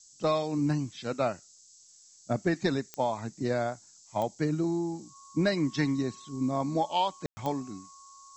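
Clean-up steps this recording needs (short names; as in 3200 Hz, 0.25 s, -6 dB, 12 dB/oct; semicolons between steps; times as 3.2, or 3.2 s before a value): de-click; notch 1100 Hz, Q 30; room tone fill 7.26–7.37; noise print and reduce 18 dB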